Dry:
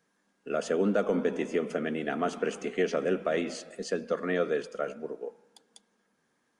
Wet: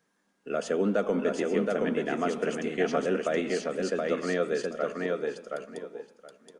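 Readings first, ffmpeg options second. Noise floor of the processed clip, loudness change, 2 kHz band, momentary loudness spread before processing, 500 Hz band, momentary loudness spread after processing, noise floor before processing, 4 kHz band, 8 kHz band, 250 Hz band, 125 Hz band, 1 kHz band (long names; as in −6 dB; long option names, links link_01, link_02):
−73 dBFS, +1.5 dB, +2.0 dB, 11 LU, +2.0 dB, 11 LU, −74 dBFS, +2.0 dB, +2.0 dB, +2.0 dB, +2.0 dB, +2.0 dB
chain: -af "aecho=1:1:722|1444|2166:0.708|0.127|0.0229"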